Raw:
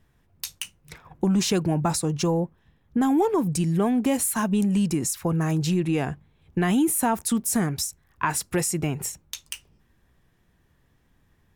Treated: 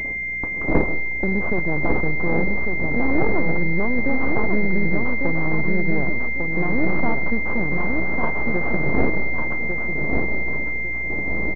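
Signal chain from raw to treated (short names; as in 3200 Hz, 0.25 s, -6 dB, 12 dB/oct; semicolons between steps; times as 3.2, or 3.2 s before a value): wind noise 370 Hz -28 dBFS; bell 92 Hz -12.5 dB 0.73 oct; half-wave rectifier; in parallel at 0 dB: compressor, threshold -31 dBFS, peak gain reduction 18 dB; on the sum: hum 60 Hz, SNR 19 dB; on a send: feedback echo 1.149 s, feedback 35%, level -4.5 dB; on the sum: digital reverb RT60 0.56 s, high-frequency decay 0.4×, pre-delay 60 ms, DRR 16.5 dB; 7.71–8.97 companded quantiser 4-bit; pulse-width modulation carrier 2100 Hz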